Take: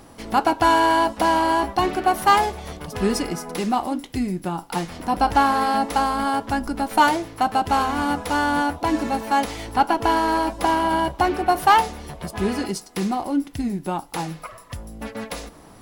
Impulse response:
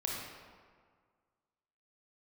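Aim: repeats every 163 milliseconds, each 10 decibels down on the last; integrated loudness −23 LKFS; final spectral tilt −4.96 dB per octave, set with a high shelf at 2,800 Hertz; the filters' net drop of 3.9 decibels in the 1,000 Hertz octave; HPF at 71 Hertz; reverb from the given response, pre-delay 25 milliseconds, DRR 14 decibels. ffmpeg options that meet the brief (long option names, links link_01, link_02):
-filter_complex "[0:a]highpass=71,equalizer=frequency=1000:width_type=o:gain=-4.5,highshelf=frequency=2800:gain=-3.5,aecho=1:1:163|326|489|652:0.316|0.101|0.0324|0.0104,asplit=2[link_01][link_02];[1:a]atrim=start_sample=2205,adelay=25[link_03];[link_02][link_03]afir=irnorm=-1:irlink=0,volume=-17.5dB[link_04];[link_01][link_04]amix=inputs=2:normalize=0,volume=0.5dB"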